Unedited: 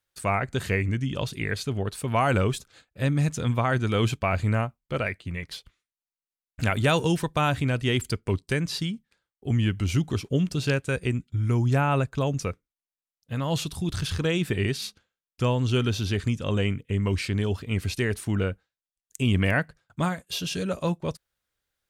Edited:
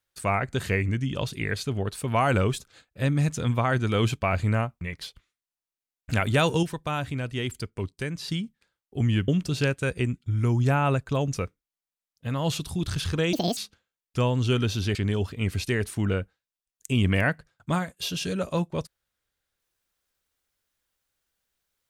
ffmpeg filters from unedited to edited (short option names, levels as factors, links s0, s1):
-filter_complex "[0:a]asplit=8[s0][s1][s2][s3][s4][s5][s6][s7];[s0]atrim=end=4.812[s8];[s1]atrim=start=5.308:end=7.132[s9];[s2]atrim=start=7.128:end=8.782,asetpts=PTS-STARTPTS,volume=0.531[s10];[s3]atrim=start=8.778:end=9.782[s11];[s4]atrim=start=10.338:end=14.394[s12];[s5]atrim=start=14.39:end=14.81,asetpts=PTS-STARTPTS,asetrate=77175,aresample=44100[s13];[s6]atrim=start=14.806:end=16.192[s14];[s7]atrim=start=17.248[s15];[s8][s9]acrossfade=d=0.004:c1=hsin:c2=hsin[s16];[s16][s10]acrossfade=d=0.004:c1=hsin:c2=hsin[s17];[s17][s11]acrossfade=d=0.004:c1=hsin:c2=hsin[s18];[s18][s12]acrossfade=d=0.004:c1=hsin:c2=hsin[s19];[s19][s13]acrossfade=d=0.004:c1=hsin:c2=hsin[s20];[s20][s14]acrossfade=d=0.004:c1=hsin:c2=hsin[s21];[s21][s15]acrossfade=d=0.004:c1=hsin:c2=hsin"